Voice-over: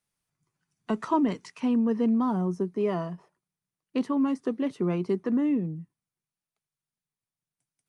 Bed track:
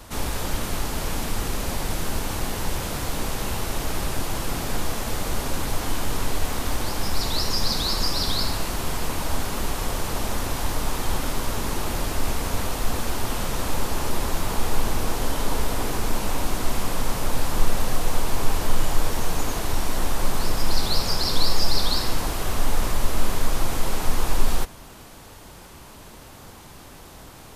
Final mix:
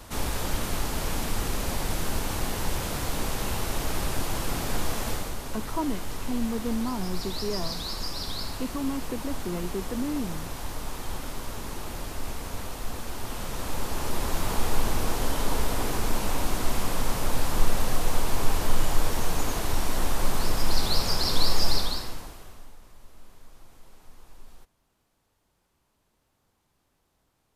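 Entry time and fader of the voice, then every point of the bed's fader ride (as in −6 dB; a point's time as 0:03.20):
4.65 s, −5.5 dB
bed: 0:05.10 −2 dB
0:05.37 −9 dB
0:13.06 −9 dB
0:14.47 −2 dB
0:21.72 −2 dB
0:22.79 −28.5 dB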